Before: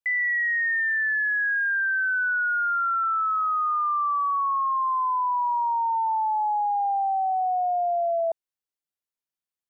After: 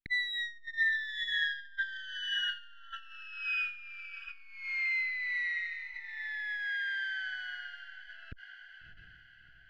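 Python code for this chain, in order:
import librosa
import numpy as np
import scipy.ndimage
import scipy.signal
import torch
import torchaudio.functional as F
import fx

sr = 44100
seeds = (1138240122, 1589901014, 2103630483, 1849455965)

y = fx.lower_of_two(x, sr, delay_ms=4.4)
y = scipy.signal.sosfilt(scipy.signal.cheby2(4, 40, [540.0, 1200.0], 'bandstop', fs=sr, output='sos'), y)
y = np.clip(10.0 ** (25.0 / 20.0) * y, -1.0, 1.0) / 10.0 ** (25.0 / 20.0)
y = fx.air_absorb(y, sr, metres=370.0)
y = fx.echo_diffused(y, sr, ms=671, feedback_pct=47, wet_db=-9.5)
y = fx.transformer_sat(y, sr, knee_hz=440.0)
y = y * librosa.db_to_amplitude(5.0)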